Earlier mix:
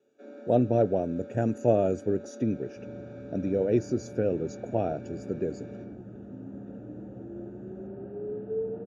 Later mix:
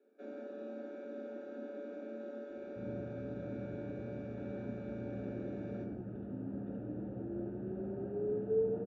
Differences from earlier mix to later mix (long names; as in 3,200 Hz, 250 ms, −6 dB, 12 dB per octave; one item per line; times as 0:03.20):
speech: muted
master: add high-frequency loss of the air 96 metres